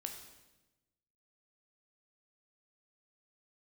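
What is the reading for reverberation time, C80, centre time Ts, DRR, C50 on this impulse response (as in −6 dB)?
1.1 s, 8.5 dB, 26 ms, 3.5 dB, 6.5 dB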